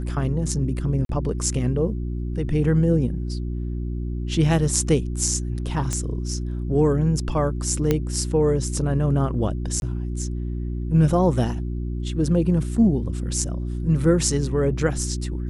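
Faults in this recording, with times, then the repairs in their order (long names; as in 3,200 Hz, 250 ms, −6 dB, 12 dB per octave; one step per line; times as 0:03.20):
mains hum 60 Hz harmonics 6 −27 dBFS
0:01.05–0:01.09: drop-out 42 ms
0:05.93: click −13 dBFS
0:07.91: click −7 dBFS
0:09.80–0:09.82: drop-out 21 ms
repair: click removal
hum removal 60 Hz, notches 6
repair the gap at 0:01.05, 42 ms
repair the gap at 0:09.80, 21 ms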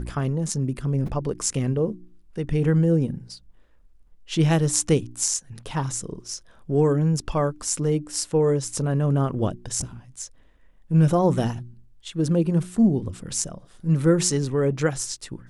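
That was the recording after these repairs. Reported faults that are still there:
none of them is left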